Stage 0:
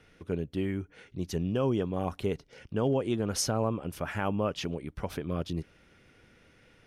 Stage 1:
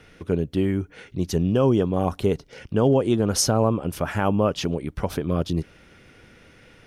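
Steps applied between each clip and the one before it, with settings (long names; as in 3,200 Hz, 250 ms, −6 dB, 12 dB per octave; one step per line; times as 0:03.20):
dynamic equaliser 2,200 Hz, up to −5 dB, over −51 dBFS, Q 1.2
level +9 dB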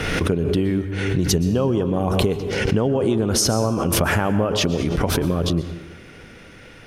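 downward compressor, threshold −24 dBFS, peak gain reduction 10 dB
dense smooth reverb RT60 1.1 s, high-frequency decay 0.65×, pre-delay 105 ms, DRR 10 dB
background raised ahead of every attack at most 28 dB per second
level +7 dB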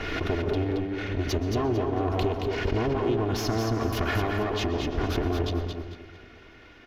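lower of the sound and its delayed copy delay 2.8 ms
moving average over 5 samples
repeating echo 224 ms, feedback 29%, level −5.5 dB
level −6 dB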